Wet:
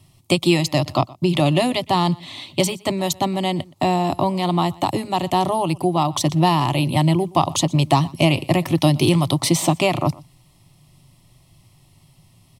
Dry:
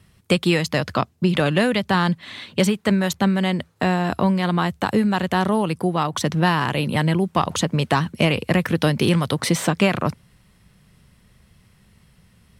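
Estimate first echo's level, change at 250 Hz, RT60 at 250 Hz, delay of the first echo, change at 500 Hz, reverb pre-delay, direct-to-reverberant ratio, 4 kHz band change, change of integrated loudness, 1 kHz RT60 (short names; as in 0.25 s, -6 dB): -23.0 dB, 0.0 dB, none, 0.121 s, +1.0 dB, none, none, +2.5 dB, +1.0 dB, none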